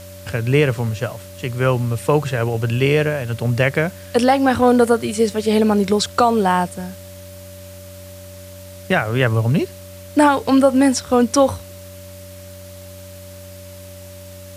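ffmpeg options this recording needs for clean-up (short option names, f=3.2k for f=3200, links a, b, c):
-af "bandreject=f=92.2:t=h:w=4,bandreject=f=184.4:t=h:w=4,bandreject=f=276.6:t=h:w=4,bandreject=f=368.8:t=h:w=4,bandreject=f=580:w=30,afwtdn=0.0071"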